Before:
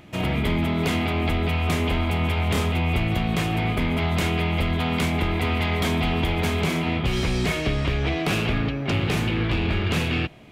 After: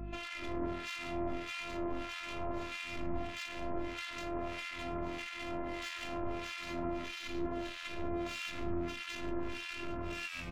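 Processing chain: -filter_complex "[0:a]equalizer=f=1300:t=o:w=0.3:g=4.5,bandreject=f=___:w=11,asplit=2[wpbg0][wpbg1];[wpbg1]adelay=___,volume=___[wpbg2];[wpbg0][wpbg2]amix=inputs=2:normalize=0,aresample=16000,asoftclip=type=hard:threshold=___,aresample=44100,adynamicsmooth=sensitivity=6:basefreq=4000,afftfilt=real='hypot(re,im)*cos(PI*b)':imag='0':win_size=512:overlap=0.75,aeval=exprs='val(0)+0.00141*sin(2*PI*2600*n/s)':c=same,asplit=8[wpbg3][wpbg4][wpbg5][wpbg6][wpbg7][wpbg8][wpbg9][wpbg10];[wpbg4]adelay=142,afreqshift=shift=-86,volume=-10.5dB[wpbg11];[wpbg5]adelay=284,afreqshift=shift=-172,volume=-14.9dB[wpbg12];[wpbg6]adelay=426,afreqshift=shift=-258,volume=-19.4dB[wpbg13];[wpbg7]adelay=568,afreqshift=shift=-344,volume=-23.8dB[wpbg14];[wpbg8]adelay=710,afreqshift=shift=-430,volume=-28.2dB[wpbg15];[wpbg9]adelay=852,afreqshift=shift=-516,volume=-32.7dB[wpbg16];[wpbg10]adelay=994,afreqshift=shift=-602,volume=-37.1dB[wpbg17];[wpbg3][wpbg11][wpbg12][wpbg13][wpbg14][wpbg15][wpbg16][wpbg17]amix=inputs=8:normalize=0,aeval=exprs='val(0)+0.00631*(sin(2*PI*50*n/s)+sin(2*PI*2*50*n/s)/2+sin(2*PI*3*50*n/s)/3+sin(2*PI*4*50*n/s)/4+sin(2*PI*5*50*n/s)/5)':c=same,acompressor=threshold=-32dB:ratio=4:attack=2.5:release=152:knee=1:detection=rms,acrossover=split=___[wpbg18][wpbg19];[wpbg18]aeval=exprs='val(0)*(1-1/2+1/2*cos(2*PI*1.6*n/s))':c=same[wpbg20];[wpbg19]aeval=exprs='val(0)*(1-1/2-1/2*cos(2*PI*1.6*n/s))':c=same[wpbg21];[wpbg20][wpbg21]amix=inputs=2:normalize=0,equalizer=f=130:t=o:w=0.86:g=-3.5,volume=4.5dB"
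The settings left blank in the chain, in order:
5400, 19, -4.5dB, -25.5dB, 1300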